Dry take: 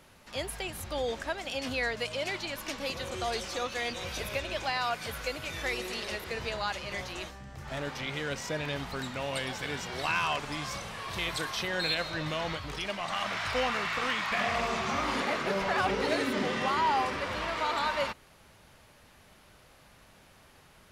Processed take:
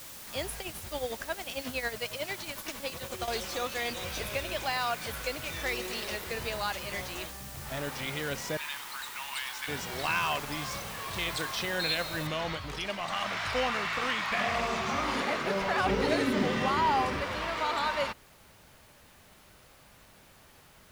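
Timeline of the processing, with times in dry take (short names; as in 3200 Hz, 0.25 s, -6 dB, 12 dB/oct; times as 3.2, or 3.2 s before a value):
0.59–3.28 tremolo 11 Hz, depth 73%
8.57–9.68 elliptic high-pass 900 Hz, stop band 60 dB
12.27 noise floor step -46 dB -64 dB
15.86–17.23 low shelf 260 Hz +7.5 dB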